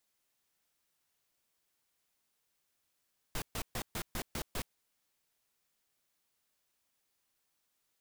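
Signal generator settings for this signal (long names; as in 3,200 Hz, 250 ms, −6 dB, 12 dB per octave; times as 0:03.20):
noise bursts pink, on 0.07 s, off 0.13 s, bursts 7, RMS −37 dBFS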